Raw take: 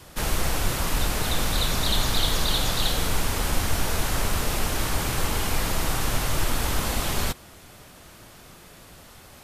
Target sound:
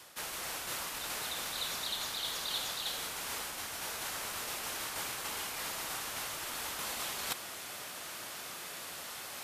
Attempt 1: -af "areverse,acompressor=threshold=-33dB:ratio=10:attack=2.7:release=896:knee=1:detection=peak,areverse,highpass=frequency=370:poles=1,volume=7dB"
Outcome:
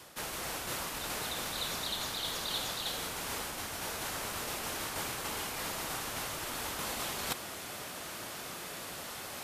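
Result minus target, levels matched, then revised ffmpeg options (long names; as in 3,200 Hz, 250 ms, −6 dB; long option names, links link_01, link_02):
500 Hz band +4.0 dB
-af "areverse,acompressor=threshold=-33dB:ratio=10:attack=2.7:release=896:knee=1:detection=peak,areverse,highpass=frequency=990:poles=1,volume=7dB"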